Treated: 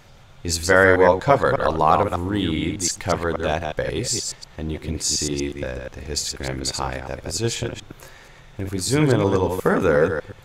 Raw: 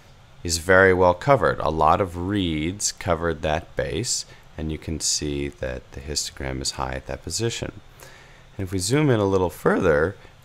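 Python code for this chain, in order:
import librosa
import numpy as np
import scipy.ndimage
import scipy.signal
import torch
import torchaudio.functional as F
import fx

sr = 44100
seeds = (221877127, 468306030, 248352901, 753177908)

y = fx.reverse_delay(x, sr, ms=120, wet_db=-4.5)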